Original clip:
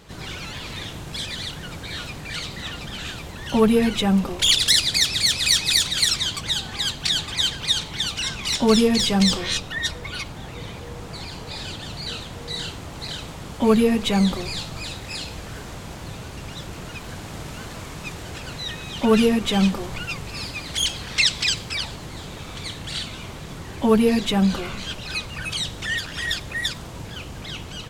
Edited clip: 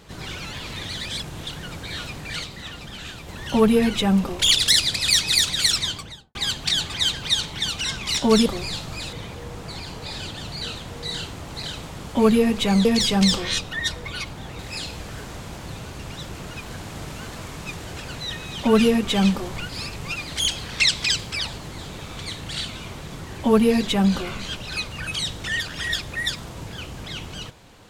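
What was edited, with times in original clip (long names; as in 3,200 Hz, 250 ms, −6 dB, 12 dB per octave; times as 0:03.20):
0:00.89–0:01.47: reverse
0:02.44–0:03.28: clip gain −4 dB
0:04.96–0:05.34: remove
0:06.18–0:06.73: fade out and dull
0:08.84–0:10.58: swap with 0:14.30–0:14.97
0:20.07–0:20.54: reverse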